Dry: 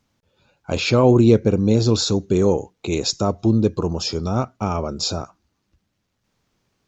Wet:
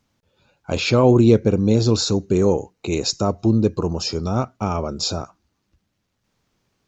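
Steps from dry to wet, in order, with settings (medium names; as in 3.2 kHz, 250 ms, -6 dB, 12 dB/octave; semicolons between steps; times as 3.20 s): 1.91–4.26 s: band-stop 3.4 kHz, Q 8.1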